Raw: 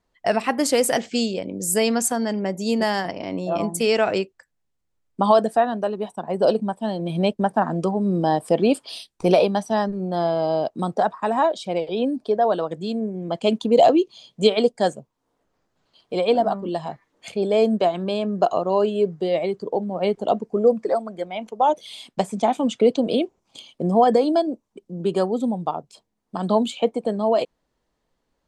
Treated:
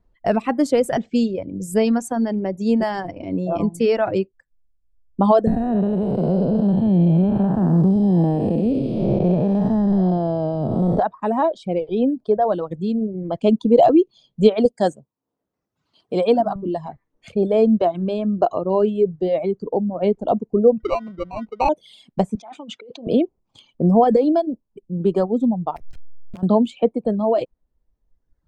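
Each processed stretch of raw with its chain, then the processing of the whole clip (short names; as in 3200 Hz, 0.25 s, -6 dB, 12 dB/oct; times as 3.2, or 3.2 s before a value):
5.47–10.99 time blur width 0.433 s + low shelf 310 Hz +10 dB + three-band squash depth 100%
14.65–16.56 HPF 140 Hz + high shelf 4200 Hz +11 dB
20.8–21.69 sample-rate reducer 1700 Hz + air absorption 170 m
22.35–23.07 negative-ratio compressor -27 dBFS + HPF 1300 Hz 6 dB/oct + air absorption 64 m
25.76–26.43 level-crossing sampler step -37 dBFS + compressor 5:1, threshold -38 dBFS + wrapped overs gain 31 dB
whole clip: reverb removal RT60 1.2 s; tilt -3.5 dB/oct; gain -1 dB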